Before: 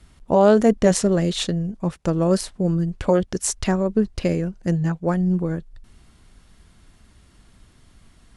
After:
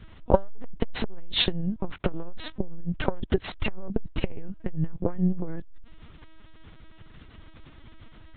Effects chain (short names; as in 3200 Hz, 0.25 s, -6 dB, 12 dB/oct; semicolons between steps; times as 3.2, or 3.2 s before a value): LPC vocoder at 8 kHz pitch kept; core saturation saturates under 220 Hz; gain +5 dB